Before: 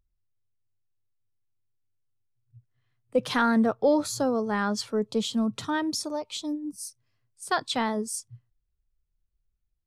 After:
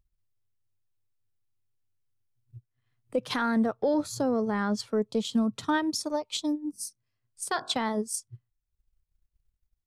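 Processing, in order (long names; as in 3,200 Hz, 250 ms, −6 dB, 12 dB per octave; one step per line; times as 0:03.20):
0:03.94–0:04.86: low-shelf EQ 480 Hz +5.5 dB
0:06.71–0:07.75: hum removal 45.89 Hz, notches 37
transient designer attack +7 dB, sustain −7 dB
brickwall limiter −17.5 dBFS, peak gain reduction 12 dB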